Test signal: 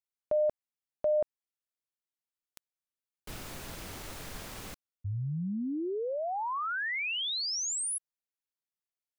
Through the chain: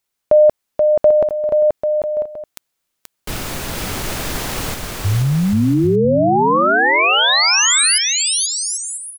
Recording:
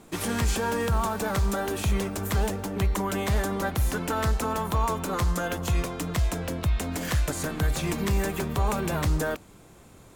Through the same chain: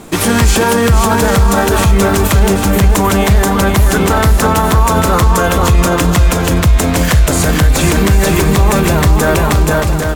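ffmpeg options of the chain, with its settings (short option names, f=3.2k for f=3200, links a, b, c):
-af "aecho=1:1:480|792|994.8|1127|1212:0.631|0.398|0.251|0.158|0.1,alimiter=level_in=18.5dB:limit=-1dB:release=50:level=0:latency=1,volume=-1dB"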